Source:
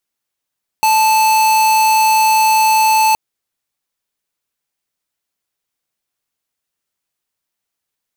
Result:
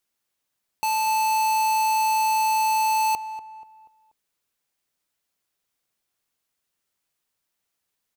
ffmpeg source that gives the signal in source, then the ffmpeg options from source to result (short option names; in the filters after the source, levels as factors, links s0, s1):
-f lavfi -i "aevalsrc='0.266*(2*lt(mod(875*t,1),0.5)-1)':d=2.32:s=44100"
-filter_complex "[0:a]alimiter=limit=0.0708:level=0:latency=1,asplit=2[s0][s1];[s1]adelay=241,lowpass=f=1900:p=1,volume=0.251,asplit=2[s2][s3];[s3]adelay=241,lowpass=f=1900:p=1,volume=0.43,asplit=2[s4][s5];[s5]adelay=241,lowpass=f=1900:p=1,volume=0.43,asplit=2[s6][s7];[s7]adelay=241,lowpass=f=1900:p=1,volume=0.43[s8];[s0][s2][s4][s6][s8]amix=inputs=5:normalize=0"